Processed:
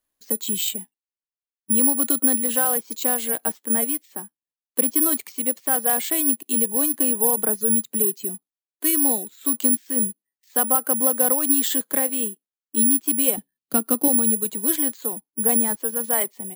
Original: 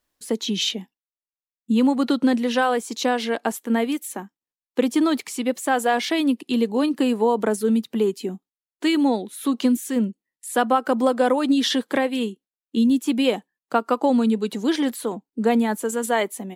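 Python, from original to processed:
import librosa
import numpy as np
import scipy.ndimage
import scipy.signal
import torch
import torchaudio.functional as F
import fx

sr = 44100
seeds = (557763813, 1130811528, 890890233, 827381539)

y = (np.kron(scipy.signal.resample_poly(x, 1, 4), np.eye(4)[0]) * 4)[:len(x)]
y = fx.graphic_eq(y, sr, hz=(125, 250, 1000, 4000, 8000), db=(12, 8, -7, 7, -3), at=(13.37, 14.08))
y = F.gain(torch.from_numpy(y), -6.5).numpy()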